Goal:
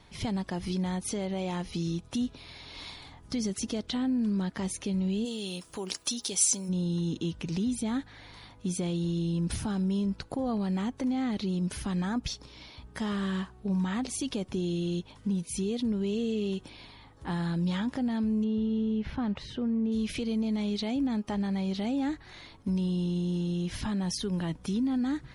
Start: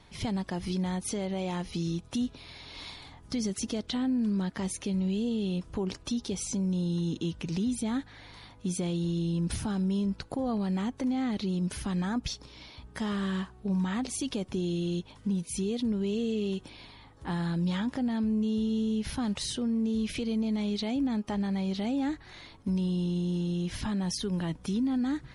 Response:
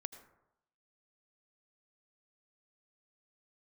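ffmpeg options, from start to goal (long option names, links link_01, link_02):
-filter_complex "[0:a]asplit=3[link_01][link_02][link_03];[link_01]afade=type=out:start_time=5.24:duration=0.02[link_04];[link_02]aemphasis=mode=production:type=riaa,afade=type=in:start_time=5.24:duration=0.02,afade=type=out:start_time=6.68:duration=0.02[link_05];[link_03]afade=type=in:start_time=6.68:duration=0.02[link_06];[link_04][link_05][link_06]amix=inputs=3:normalize=0,asettb=1/sr,asplit=3[link_07][link_08][link_09];[link_07]atrim=end=18.444[link_10];[link_08]atrim=start=18.44:end=19.92,asetpts=PTS-STARTPTS,afade=type=in:duration=0.004:curve=qsin,afade=type=out:start_time=1.476:duration=0.004:curve=qsin,lowpass=2400[link_11];[link_09]atrim=start=19.916[link_12];[link_10][link_11]acrossfade=duration=0.004:curve1=hsin:curve2=qsin[link_13];[link_13][link_12]acrossfade=duration=0.004:curve1=qsin:curve2=hsin"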